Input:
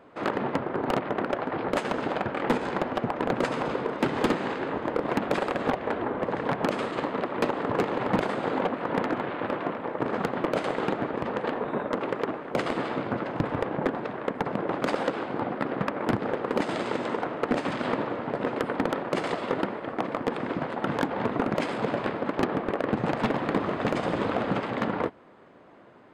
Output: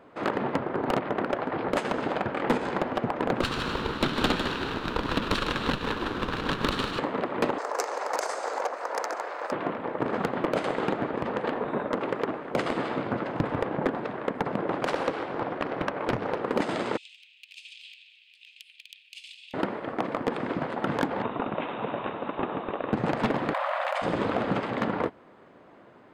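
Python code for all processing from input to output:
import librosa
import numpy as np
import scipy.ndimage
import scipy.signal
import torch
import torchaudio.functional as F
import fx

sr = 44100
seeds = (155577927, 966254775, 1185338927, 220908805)

y = fx.chain(x, sr, fx.lower_of_two(delay_ms=0.71),
    fx.peak_eq(hz=3700.0, db=11.5, octaves=0.58),
    fx.echo_single(ms=153, db=-8.0), at=(3.41, 6.99))
y = fx.chain(y, sr, fx.highpass(hz=510.0, slope=24),
    fx.high_shelf_res(hz=4400.0, db=10.5, q=3.0), at=(7.58, 9.52))
y = fx.chain(y, sr, fx.peak_eq(hz=230.0, db=-6.5, octaves=0.41),
    fx.hum_notches(base_hz=50, count=8),
    fx.doppler_dist(depth_ms=0.78), at=(14.83, 16.39))
y = fx.chain(y, sr, fx.cheby1_highpass(hz=2500.0, order=6),
    fx.peak_eq(hz=7700.0, db=-6.5, octaves=1.6), at=(16.97, 19.54))
y = fx.chain(y, sr, fx.delta_mod(bps=64000, step_db=-36.0),
    fx.cheby_ripple(hz=3800.0, ripple_db=6), at=(21.22, 22.93))
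y = fx.chain(y, sr, fx.brickwall_highpass(low_hz=520.0),
    fx.peak_eq(hz=5900.0, db=-7.5, octaves=0.94),
    fx.env_flatten(amount_pct=100), at=(23.53, 24.02))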